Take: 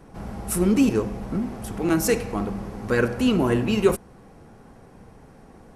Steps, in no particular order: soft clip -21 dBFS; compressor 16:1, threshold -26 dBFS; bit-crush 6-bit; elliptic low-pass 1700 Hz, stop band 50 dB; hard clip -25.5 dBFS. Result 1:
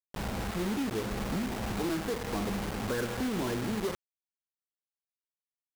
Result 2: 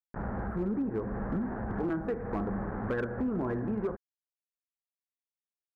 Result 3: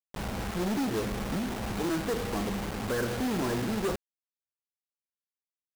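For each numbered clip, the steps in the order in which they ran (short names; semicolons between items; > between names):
compressor > hard clip > elliptic low-pass > bit-crush > soft clip; bit-crush > compressor > elliptic low-pass > soft clip > hard clip; soft clip > compressor > hard clip > elliptic low-pass > bit-crush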